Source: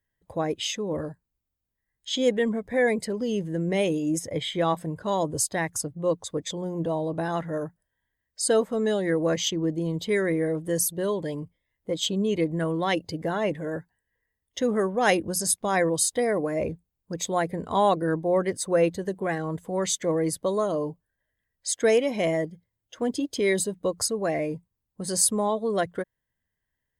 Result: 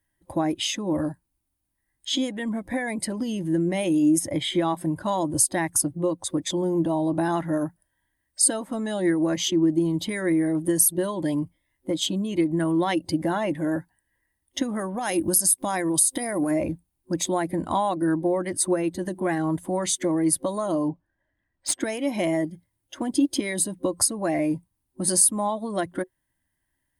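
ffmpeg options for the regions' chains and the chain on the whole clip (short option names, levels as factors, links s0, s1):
-filter_complex "[0:a]asettb=1/sr,asplit=3[s0][s1][s2];[s0]atrim=end=14.994[s3];[s1]atrim=start=14.99:end=16.51,asetpts=PTS-STARTPTS,afade=t=in:d=0.004:c=qsin,afade=t=out:st=1.516:d=0.004:c=qsin,highshelf=f=6100:g=11,acompressor=threshold=0.0501:ratio=5:attack=3.2:release=140:knee=1:detection=peak[s4];[s2]atrim=start=16.506[s5];[s3][s4]acrossfade=d=0.004:c1=hsin:c2=qsin[s6];[s6][s5]acrossfade=d=0.004:c1=qsin:c2=hsin,asettb=1/sr,asplit=3[s7][s8][s9];[s7]atrim=end=20.884[s10];[s8]atrim=start=20.88:end=21.81,asetpts=PTS-STARTPTS,afade=t=in:d=0.004:c=qsin,afade=t=out:st=0.926:d=0.004:c=qsin,adynamicsmooth=sensitivity=3.5:basefreq=3300,equalizer=f=490:t=o:w=2.7:g=3[s11];[s9]atrim=start=21.806[s12];[s10][s11]acrossfade=d=0.004:c1=hsin:c2=qsin[s13];[s13][s12]acrossfade=d=0.004:c1=qsin:c2=hsin,acompressor=threshold=0.0447:ratio=6,superequalizer=6b=2.24:7b=0.316:9b=1.41:16b=2.82,volume=1.68"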